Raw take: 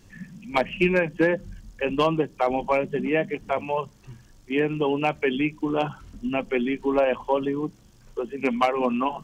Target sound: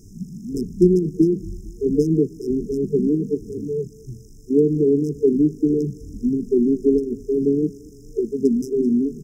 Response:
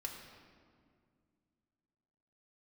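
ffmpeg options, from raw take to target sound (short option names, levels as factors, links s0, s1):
-filter_complex "[0:a]afftfilt=real='re*(1-between(b*sr/4096,460,5000))':imag='im*(1-between(b*sr/4096,460,5000))':win_size=4096:overlap=0.75,asplit=2[s0][s1];[s1]aecho=0:1:227|454|681:0.0631|0.0322|0.0164[s2];[s0][s2]amix=inputs=2:normalize=0,volume=2.51"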